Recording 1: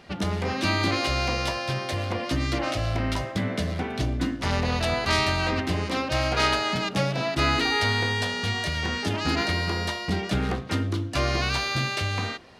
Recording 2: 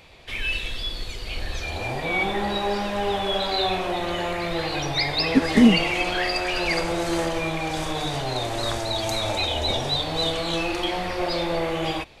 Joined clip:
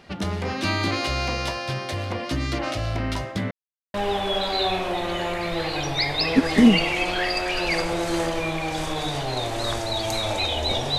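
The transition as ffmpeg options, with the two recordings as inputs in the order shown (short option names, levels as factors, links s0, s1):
-filter_complex "[0:a]apad=whole_dur=10.98,atrim=end=10.98,asplit=2[s0][s1];[s0]atrim=end=3.51,asetpts=PTS-STARTPTS,afade=t=out:st=3.506:d=0.004:c=hsin[s2];[s1]atrim=start=3.51:end=3.94,asetpts=PTS-STARTPTS,volume=0[s3];[1:a]atrim=start=2.93:end=9.97,asetpts=PTS-STARTPTS,afade=t=in:d=0.004:c=hsin[s4];[s2][s3][s4]concat=n=3:v=0:a=1"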